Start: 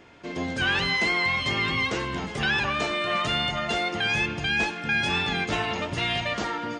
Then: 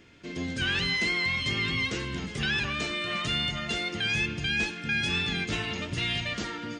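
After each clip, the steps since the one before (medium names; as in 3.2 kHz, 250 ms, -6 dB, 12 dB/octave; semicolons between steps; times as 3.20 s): peaking EQ 810 Hz -13 dB 1.6 oct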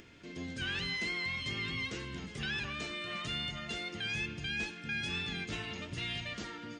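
upward compressor, threshold -40 dBFS; trim -8.5 dB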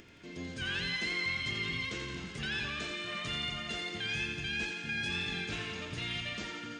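thinning echo 86 ms, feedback 73%, high-pass 420 Hz, level -6 dB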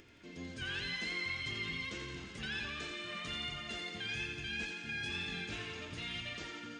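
flange 1.4 Hz, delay 2.2 ms, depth 2.1 ms, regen -63%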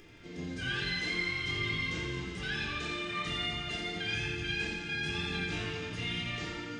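simulated room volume 680 m³, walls furnished, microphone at 3.8 m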